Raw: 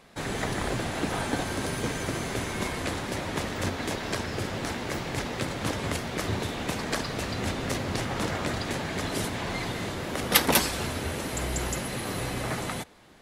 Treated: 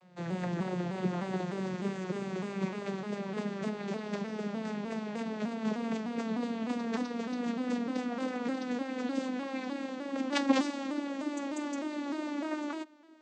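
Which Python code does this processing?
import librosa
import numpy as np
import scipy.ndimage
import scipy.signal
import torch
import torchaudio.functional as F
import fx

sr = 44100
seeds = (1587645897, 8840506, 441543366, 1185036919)

y = fx.vocoder_glide(x, sr, note=53, semitones=10)
y = fx.vibrato_shape(y, sr, shape='saw_down', rate_hz=3.3, depth_cents=100.0)
y = y * librosa.db_to_amplitude(-2.5)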